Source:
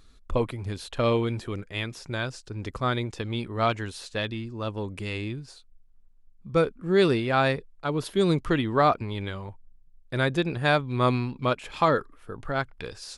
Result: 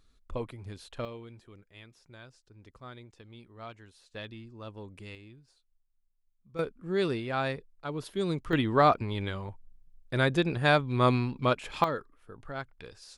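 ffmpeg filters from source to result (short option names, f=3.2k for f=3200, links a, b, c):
-af "asetnsamples=n=441:p=0,asendcmd='1.05 volume volume -20dB;4.14 volume volume -12dB;5.15 volume volume -19dB;6.59 volume volume -8dB;8.53 volume volume -1dB;11.84 volume volume -10dB',volume=-10dB"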